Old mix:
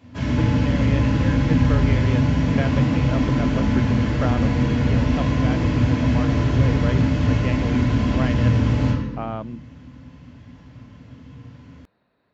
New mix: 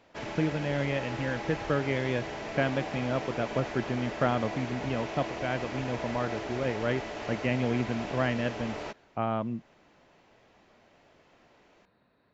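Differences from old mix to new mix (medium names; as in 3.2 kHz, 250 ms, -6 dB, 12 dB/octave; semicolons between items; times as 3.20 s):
background: add treble shelf 5.7 kHz -6 dB; reverb: off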